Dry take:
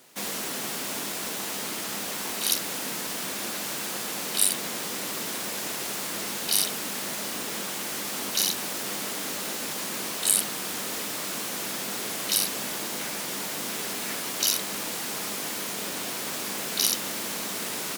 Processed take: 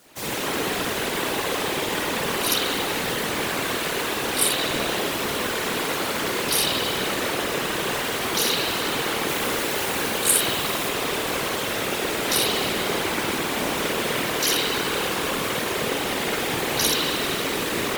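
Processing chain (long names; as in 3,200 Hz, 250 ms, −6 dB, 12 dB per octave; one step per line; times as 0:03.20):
spring reverb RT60 2.2 s, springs 51 ms, chirp 30 ms, DRR −9 dB
random phases in short frames
0:09.28–0:10.89: high-shelf EQ 9,500 Hz +5 dB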